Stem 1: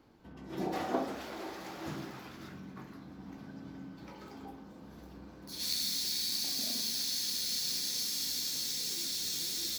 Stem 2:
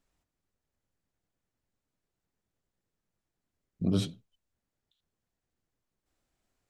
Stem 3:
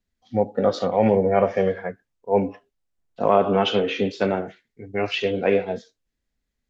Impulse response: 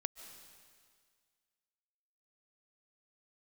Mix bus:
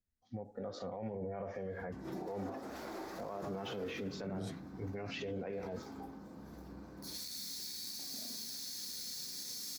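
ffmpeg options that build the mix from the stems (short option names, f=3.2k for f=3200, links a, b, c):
-filter_complex "[0:a]acompressor=threshold=-39dB:ratio=6,adelay=1550,volume=0dB[a];[1:a]adelay=450,volume=-5.5dB[b];[2:a]acompressor=threshold=-27dB:ratio=4,equalizer=f=82:t=o:w=1.4:g=6.5,dynaudnorm=f=210:g=7:m=9.5dB,volume=-12.5dB[c];[a][b][c]amix=inputs=3:normalize=0,equalizer=f=3k:w=1.8:g=-8.5,alimiter=level_in=9dB:limit=-24dB:level=0:latency=1:release=42,volume=-9dB"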